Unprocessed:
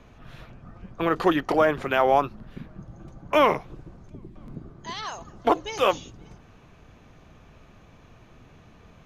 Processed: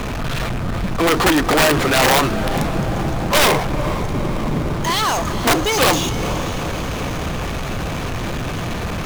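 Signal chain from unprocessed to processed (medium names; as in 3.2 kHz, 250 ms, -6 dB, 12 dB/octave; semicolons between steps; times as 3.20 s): power-law waveshaper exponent 0.35; echo that smears into a reverb 464 ms, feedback 68%, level -11.5 dB; integer overflow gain 9.5 dB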